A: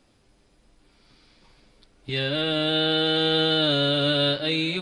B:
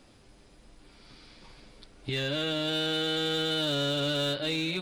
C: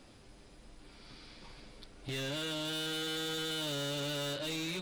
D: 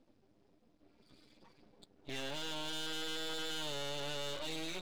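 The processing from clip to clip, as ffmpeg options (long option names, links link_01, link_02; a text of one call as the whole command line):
ffmpeg -i in.wav -filter_complex "[0:a]asplit=2[link_01][link_02];[link_02]aeval=exprs='0.0794*(abs(mod(val(0)/0.0794+3,4)-2)-1)':channel_layout=same,volume=-7dB[link_03];[link_01][link_03]amix=inputs=2:normalize=0,acompressor=threshold=-37dB:ratio=2,volume=1.5dB" out.wav
ffmpeg -i in.wav -af "asoftclip=type=tanh:threshold=-35dB" out.wav
ffmpeg -i in.wav -af "afftdn=noise_reduction=19:noise_floor=-50,highpass=200,lowpass=6800,aeval=exprs='max(val(0),0)':channel_layout=same,volume=1.5dB" out.wav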